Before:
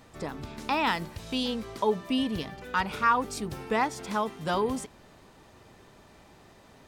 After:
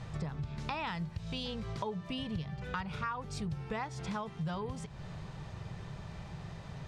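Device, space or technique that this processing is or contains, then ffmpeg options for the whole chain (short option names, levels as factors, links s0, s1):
jukebox: -af "lowpass=6200,lowshelf=f=200:t=q:w=3:g=8.5,acompressor=threshold=0.00891:ratio=5,volume=1.68"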